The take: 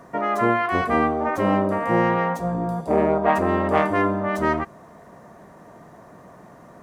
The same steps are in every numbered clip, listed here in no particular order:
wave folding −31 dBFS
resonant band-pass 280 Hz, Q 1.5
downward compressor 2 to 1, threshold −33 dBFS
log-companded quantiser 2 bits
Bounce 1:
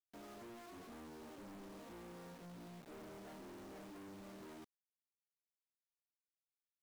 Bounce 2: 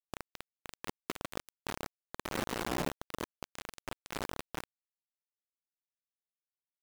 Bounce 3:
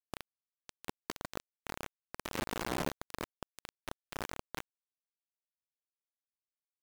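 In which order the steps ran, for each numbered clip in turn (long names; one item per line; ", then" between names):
resonant band-pass, then log-companded quantiser, then wave folding, then downward compressor
wave folding, then resonant band-pass, then downward compressor, then log-companded quantiser
wave folding, then downward compressor, then resonant band-pass, then log-companded quantiser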